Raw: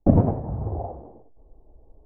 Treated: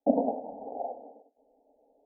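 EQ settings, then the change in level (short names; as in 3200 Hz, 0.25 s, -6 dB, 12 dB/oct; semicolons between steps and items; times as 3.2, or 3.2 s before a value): elliptic band-pass 270–840 Hz, stop band 40 dB; bell 430 Hz -7 dB 2.4 oct; fixed phaser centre 350 Hz, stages 6; +6.5 dB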